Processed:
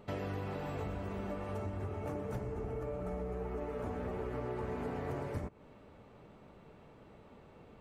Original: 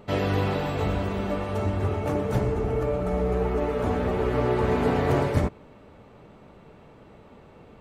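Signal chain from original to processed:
dynamic equaliser 3,700 Hz, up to −6 dB, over −53 dBFS, Q 1.7
downward compressor 5 to 1, threshold −29 dBFS, peak gain reduction 11.5 dB
level −7 dB

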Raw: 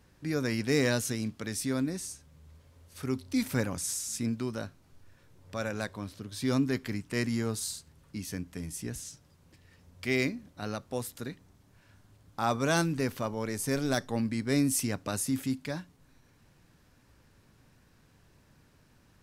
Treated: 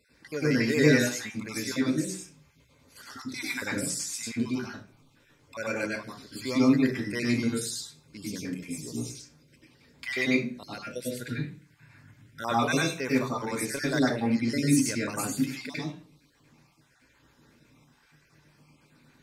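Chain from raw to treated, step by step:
time-frequency cells dropped at random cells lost 46%
0:11.17–0:12.42: octave-band graphic EQ 125/500/2,000/4,000 Hz +11/−4/+6/−3 dB
convolution reverb RT60 0.40 s, pre-delay 93 ms, DRR −4 dB

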